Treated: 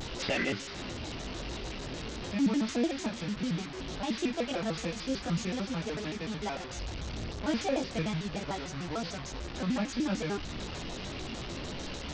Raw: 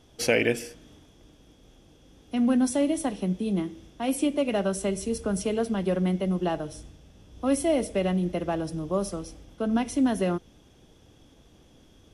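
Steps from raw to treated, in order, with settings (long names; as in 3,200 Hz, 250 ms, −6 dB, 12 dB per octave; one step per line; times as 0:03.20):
linear delta modulator 32 kbit/s, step −29.5 dBFS
dynamic equaliser 460 Hz, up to −7 dB, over −37 dBFS, Q 0.76
multi-voice chorus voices 2, 0.33 Hz, delay 18 ms, depth 4.8 ms
pitch modulation by a square or saw wave square 6.7 Hz, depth 250 cents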